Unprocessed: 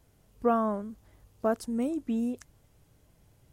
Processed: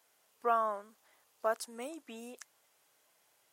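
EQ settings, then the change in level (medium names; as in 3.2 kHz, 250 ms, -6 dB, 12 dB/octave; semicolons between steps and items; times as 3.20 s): high-pass 840 Hz 12 dB/octave; +1.5 dB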